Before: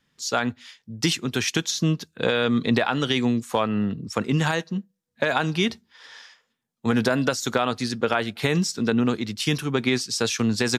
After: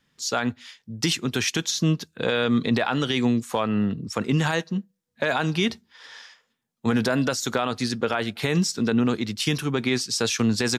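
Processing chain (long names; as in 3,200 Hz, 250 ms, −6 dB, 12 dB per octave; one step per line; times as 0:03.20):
brickwall limiter −13.5 dBFS, peak gain reduction 5.5 dB
level +1 dB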